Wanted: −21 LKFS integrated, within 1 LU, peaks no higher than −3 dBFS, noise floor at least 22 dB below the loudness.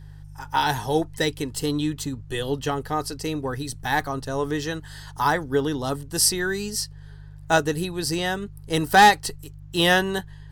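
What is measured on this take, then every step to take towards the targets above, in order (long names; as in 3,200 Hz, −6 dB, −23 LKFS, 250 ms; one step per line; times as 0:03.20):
mains hum 50 Hz; hum harmonics up to 150 Hz; level of the hum −39 dBFS; integrated loudness −23.5 LKFS; sample peak −7.0 dBFS; target loudness −21.0 LKFS
→ hum removal 50 Hz, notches 3
level +2.5 dB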